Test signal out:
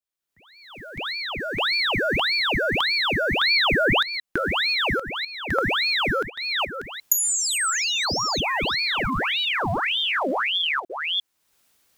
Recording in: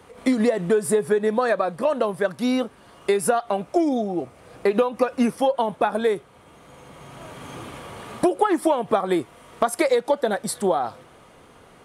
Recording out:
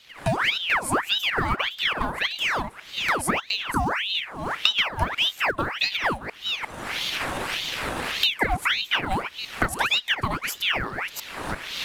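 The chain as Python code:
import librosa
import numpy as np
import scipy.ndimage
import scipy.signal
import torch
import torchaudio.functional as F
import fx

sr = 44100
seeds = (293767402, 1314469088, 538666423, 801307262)

p1 = fx.reverse_delay(x, sr, ms=350, wet_db=-12.5)
p2 = fx.recorder_agc(p1, sr, target_db=-15.5, rise_db_per_s=36.0, max_gain_db=30)
p3 = fx.quant_float(p2, sr, bits=2)
p4 = p2 + (p3 * 10.0 ** (-10.5 / 20.0))
p5 = fx.ring_lfo(p4, sr, carrier_hz=1900.0, swing_pct=80, hz=1.7)
y = p5 * 10.0 ** (-3.5 / 20.0)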